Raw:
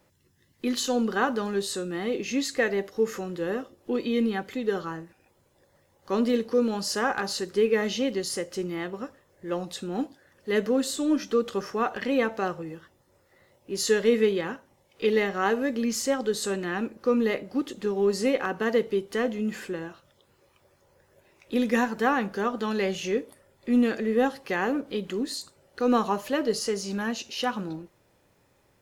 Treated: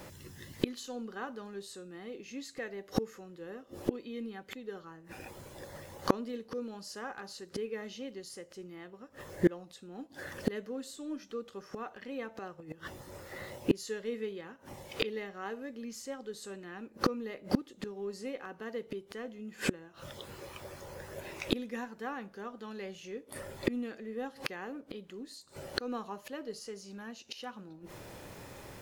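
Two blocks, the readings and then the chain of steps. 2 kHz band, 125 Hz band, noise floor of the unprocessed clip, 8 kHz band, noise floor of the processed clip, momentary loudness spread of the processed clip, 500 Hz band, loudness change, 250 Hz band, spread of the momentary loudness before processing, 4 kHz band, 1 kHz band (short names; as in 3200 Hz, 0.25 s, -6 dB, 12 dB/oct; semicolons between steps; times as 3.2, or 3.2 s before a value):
-12.0 dB, -5.0 dB, -66 dBFS, -13.0 dB, -57 dBFS, 14 LU, -13.0 dB, -12.5 dB, -10.5 dB, 10 LU, -9.5 dB, -12.5 dB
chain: flipped gate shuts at -29 dBFS, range -32 dB; gain +16.5 dB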